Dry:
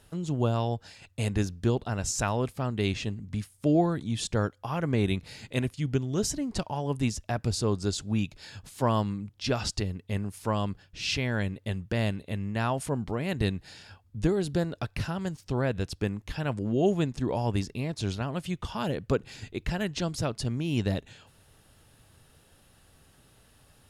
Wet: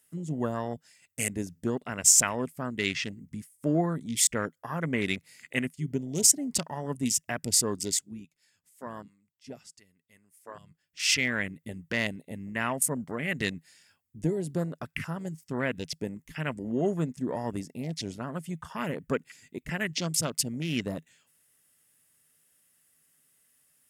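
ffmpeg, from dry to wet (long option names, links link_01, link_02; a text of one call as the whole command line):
ffmpeg -i in.wav -filter_complex "[0:a]asplit=3[link_01][link_02][link_03];[link_01]atrim=end=8.2,asetpts=PTS-STARTPTS,afade=type=out:start_time=7.79:duration=0.41:silence=0.266073[link_04];[link_02]atrim=start=8.2:end=10.72,asetpts=PTS-STARTPTS,volume=-11.5dB[link_05];[link_03]atrim=start=10.72,asetpts=PTS-STARTPTS,afade=type=in:duration=0.41:silence=0.266073[link_06];[link_04][link_05][link_06]concat=n=3:v=0:a=1,aemphasis=mode=production:type=riaa,afwtdn=0.0158,equalizer=frequency=160:width_type=o:width=0.33:gain=10,equalizer=frequency=250:width_type=o:width=0.33:gain=7,equalizer=frequency=800:width_type=o:width=0.33:gain=-5,equalizer=frequency=2000:width_type=o:width=0.33:gain=9,equalizer=frequency=4000:width_type=o:width=0.33:gain=-7,equalizer=frequency=8000:width_type=o:width=0.33:gain=4" out.wav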